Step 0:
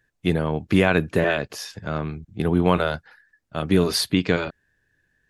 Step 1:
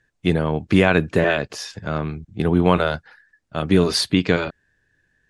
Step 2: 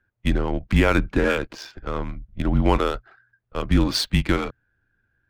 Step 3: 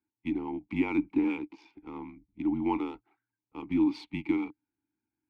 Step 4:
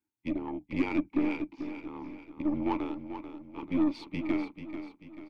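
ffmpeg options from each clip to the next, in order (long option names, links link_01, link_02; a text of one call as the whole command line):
ffmpeg -i in.wav -af "lowpass=frequency=9600:width=0.5412,lowpass=frequency=9600:width=1.3066,volume=2.5dB" out.wav
ffmpeg -i in.wav -af "adynamicsmooth=sensitivity=4:basefreq=2400,afreqshift=-120,volume=-2dB" out.wav
ffmpeg -i in.wav -filter_complex "[0:a]asplit=3[link_01][link_02][link_03];[link_01]bandpass=frequency=300:width_type=q:width=8,volume=0dB[link_04];[link_02]bandpass=frequency=870:width_type=q:width=8,volume=-6dB[link_05];[link_03]bandpass=frequency=2240:width_type=q:width=8,volume=-9dB[link_06];[link_04][link_05][link_06]amix=inputs=3:normalize=0,volume=1.5dB" out.wav
ffmpeg -i in.wav -filter_complex "[0:a]aeval=exprs='0.168*(cos(1*acos(clip(val(0)/0.168,-1,1)))-cos(1*PI/2))+0.0133*(cos(6*acos(clip(val(0)/0.168,-1,1)))-cos(6*PI/2))':channel_layout=same,asplit=2[link_01][link_02];[link_02]aecho=0:1:439|878|1317|1756|2195:0.316|0.145|0.0669|0.0308|0.0142[link_03];[link_01][link_03]amix=inputs=2:normalize=0,volume=-1.5dB" out.wav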